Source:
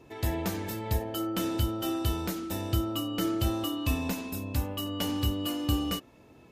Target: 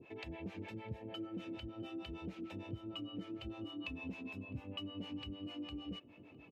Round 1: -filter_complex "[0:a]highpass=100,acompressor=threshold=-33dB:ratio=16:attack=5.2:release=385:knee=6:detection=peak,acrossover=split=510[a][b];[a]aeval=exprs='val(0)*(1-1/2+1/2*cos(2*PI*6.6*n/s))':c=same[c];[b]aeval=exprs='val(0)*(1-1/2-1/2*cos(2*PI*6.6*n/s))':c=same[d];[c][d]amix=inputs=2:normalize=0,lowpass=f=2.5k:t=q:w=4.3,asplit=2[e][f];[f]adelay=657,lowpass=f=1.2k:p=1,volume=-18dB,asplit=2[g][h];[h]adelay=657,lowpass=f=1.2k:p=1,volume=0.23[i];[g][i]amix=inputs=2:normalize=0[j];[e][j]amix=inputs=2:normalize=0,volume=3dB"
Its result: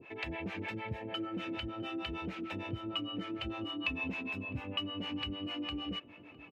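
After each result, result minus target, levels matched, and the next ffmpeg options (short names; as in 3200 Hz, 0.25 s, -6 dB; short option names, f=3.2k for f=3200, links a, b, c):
compressor: peak gain reduction -5 dB; 2000 Hz band +4.5 dB
-filter_complex "[0:a]highpass=100,acompressor=threshold=-39dB:ratio=16:attack=5.2:release=385:knee=6:detection=peak,acrossover=split=510[a][b];[a]aeval=exprs='val(0)*(1-1/2+1/2*cos(2*PI*6.6*n/s))':c=same[c];[b]aeval=exprs='val(0)*(1-1/2-1/2*cos(2*PI*6.6*n/s))':c=same[d];[c][d]amix=inputs=2:normalize=0,lowpass=f=2.5k:t=q:w=4.3,asplit=2[e][f];[f]adelay=657,lowpass=f=1.2k:p=1,volume=-18dB,asplit=2[g][h];[h]adelay=657,lowpass=f=1.2k:p=1,volume=0.23[i];[g][i]amix=inputs=2:normalize=0[j];[e][j]amix=inputs=2:normalize=0,volume=3dB"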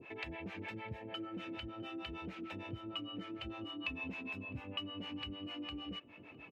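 2000 Hz band +5.0 dB
-filter_complex "[0:a]highpass=100,equalizer=f=1.7k:w=0.59:g=-10.5,acompressor=threshold=-39dB:ratio=16:attack=5.2:release=385:knee=6:detection=peak,acrossover=split=510[a][b];[a]aeval=exprs='val(0)*(1-1/2+1/2*cos(2*PI*6.6*n/s))':c=same[c];[b]aeval=exprs='val(0)*(1-1/2-1/2*cos(2*PI*6.6*n/s))':c=same[d];[c][d]amix=inputs=2:normalize=0,lowpass=f=2.5k:t=q:w=4.3,asplit=2[e][f];[f]adelay=657,lowpass=f=1.2k:p=1,volume=-18dB,asplit=2[g][h];[h]adelay=657,lowpass=f=1.2k:p=1,volume=0.23[i];[g][i]amix=inputs=2:normalize=0[j];[e][j]amix=inputs=2:normalize=0,volume=3dB"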